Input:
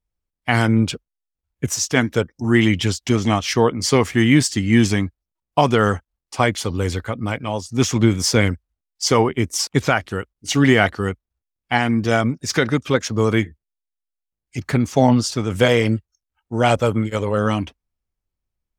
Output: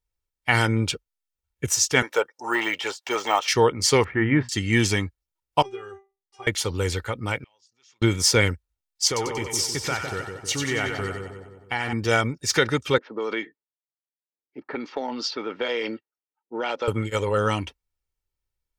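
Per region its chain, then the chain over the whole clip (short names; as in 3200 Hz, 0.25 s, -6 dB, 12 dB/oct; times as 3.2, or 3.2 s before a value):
2.02–3.48 de-esser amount 85% + HPF 600 Hz + bell 770 Hz +9 dB 2.3 oct
4.04–4.49 LPF 1900 Hz 24 dB/oct + notches 60/120/180/240 Hz
5.62–6.47 LPF 1900 Hz 6 dB/oct + metallic resonator 390 Hz, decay 0.27 s, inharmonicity 0.002
7.44–8.02 compressor 4:1, threshold -30 dBFS + band-pass 6900 Hz, Q 2.3 + air absorption 330 m
9.07–11.93 compressor 2.5:1, threshold -23 dBFS + split-band echo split 970 Hz, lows 0.156 s, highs 93 ms, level -5 dB
12.98–16.88 elliptic band-pass 250–4800 Hz, stop band 50 dB + low-pass opened by the level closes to 510 Hz, open at -14.5 dBFS + compressor, threshold -20 dBFS
whole clip: tilt shelf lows -3 dB; comb 2.2 ms, depth 41%; gain -2.5 dB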